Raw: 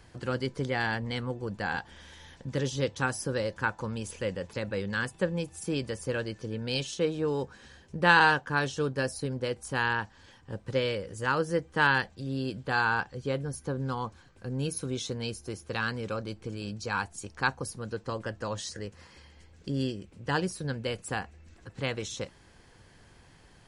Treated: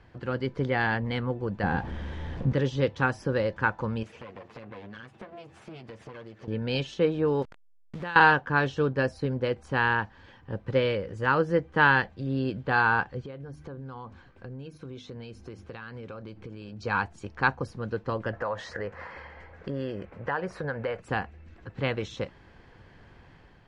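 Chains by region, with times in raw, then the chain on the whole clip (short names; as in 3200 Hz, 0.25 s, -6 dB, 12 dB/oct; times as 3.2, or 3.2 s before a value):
1.63–2.53 zero-crossing step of -39.5 dBFS + tilt shelf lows +7.5 dB, about 710 Hz
4.03–6.48 minimum comb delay 8.7 ms + HPF 110 Hz + compressor 10:1, threshold -43 dBFS
7.42–8.16 level-crossing sampler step -40.5 dBFS + high shelf 4500 Hz +11.5 dB + compressor 4:1, threshold -38 dBFS
13.21–16.81 notches 50/100/150/200/250/300 Hz + compressor 16:1, threshold -40 dBFS
18.33–21 band shelf 1000 Hz +12 dB 2.5 oct + compressor 3:1, threshold -34 dBFS
whole clip: LPF 2700 Hz 12 dB/oct; AGC gain up to 4 dB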